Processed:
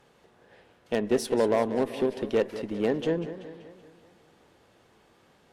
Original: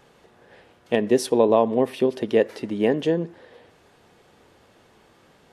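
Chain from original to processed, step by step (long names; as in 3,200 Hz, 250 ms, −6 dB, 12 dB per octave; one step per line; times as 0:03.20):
gain into a clipping stage and back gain 11 dB
harmonic generator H 6 −26 dB, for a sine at −10.5 dBFS
feedback echo with a swinging delay time 191 ms, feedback 54%, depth 159 cents, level −12.5 dB
level −5.5 dB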